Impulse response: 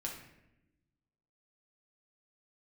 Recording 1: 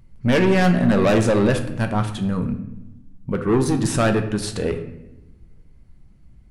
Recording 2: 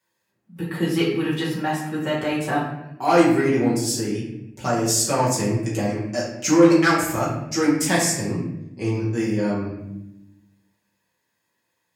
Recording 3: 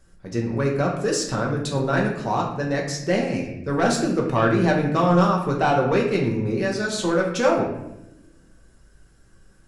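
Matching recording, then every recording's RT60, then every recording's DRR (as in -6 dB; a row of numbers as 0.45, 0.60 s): 3; 0.95, 0.90, 0.90 s; 5.5, -8.0, -1.5 dB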